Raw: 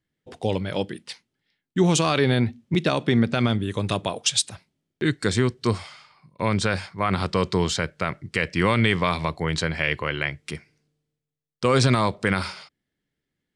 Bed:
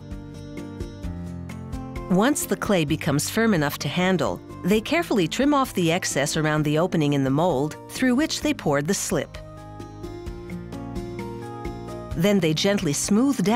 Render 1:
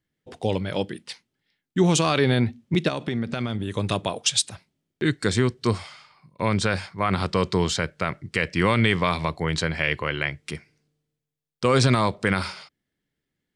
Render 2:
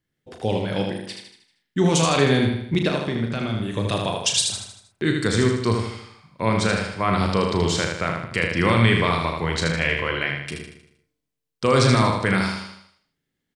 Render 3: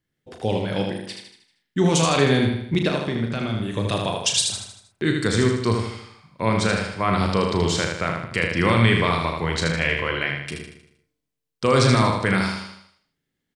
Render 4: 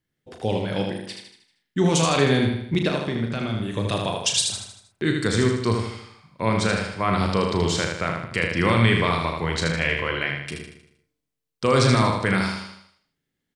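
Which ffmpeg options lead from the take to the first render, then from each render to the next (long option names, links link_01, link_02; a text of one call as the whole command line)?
ffmpeg -i in.wav -filter_complex "[0:a]asettb=1/sr,asplit=3[link_01][link_02][link_03];[link_01]atrim=end=2.884[link_04];[link_02]atrim=start=2.88:end=3.73,asetpts=PTS-STARTPTS,afade=type=in:duration=0.004:curve=qsin,afade=type=out:start_time=0.846:duration=0.004:curve=qsin,acompressor=threshold=-23dB:ratio=4:attack=3.2:release=140:knee=1:detection=peak[link_05];[link_03]atrim=start=3.726[link_06];[link_04][link_05]acrossfade=duration=0.004:curve1=hsin:curve2=qsin[link_07];[link_07][link_06]acrossfade=duration=0.004:curve1=qsin:curve2=hsin" out.wav
ffmpeg -i in.wav -filter_complex "[0:a]asplit=2[link_01][link_02];[link_02]adelay=36,volume=-7.5dB[link_03];[link_01][link_03]amix=inputs=2:normalize=0,aecho=1:1:78|156|234|312|390|468:0.596|0.286|0.137|0.0659|0.0316|0.0152" out.wav
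ffmpeg -i in.wav -af anull out.wav
ffmpeg -i in.wav -af "volume=-1dB" out.wav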